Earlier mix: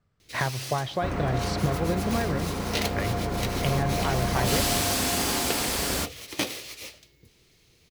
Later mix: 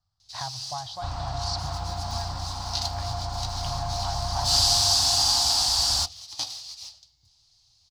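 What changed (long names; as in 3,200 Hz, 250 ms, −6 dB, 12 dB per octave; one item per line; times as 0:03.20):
speech −5.5 dB
first sound −6.5 dB
master: add drawn EQ curve 110 Hz 0 dB, 200 Hz −18 dB, 300 Hz −15 dB, 430 Hz −29 dB, 780 Hz +5 dB, 2,200 Hz −14 dB, 4,700 Hz +14 dB, 15,000 Hz −13 dB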